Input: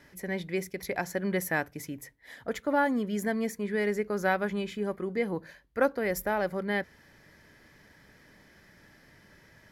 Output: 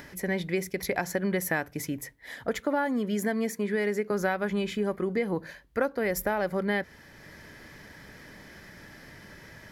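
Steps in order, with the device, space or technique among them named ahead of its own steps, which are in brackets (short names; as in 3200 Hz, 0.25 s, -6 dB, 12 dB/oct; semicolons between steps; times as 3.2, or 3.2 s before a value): upward and downward compression (upward compressor, threshold -48 dBFS; compressor 5:1, threshold -30 dBFS, peak gain reduction 10 dB); 2.64–4.11 HPF 150 Hz; gain +6 dB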